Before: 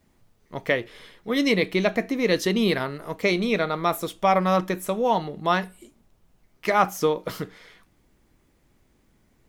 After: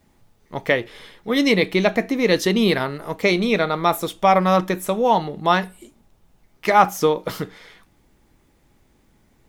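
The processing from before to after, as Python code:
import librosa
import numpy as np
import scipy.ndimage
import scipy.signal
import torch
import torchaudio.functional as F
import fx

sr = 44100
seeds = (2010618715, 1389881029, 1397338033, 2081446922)

y = fx.small_body(x, sr, hz=(840.0, 3600.0), ring_ms=45, db=6)
y = y * 10.0 ** (4.0 / 20.0)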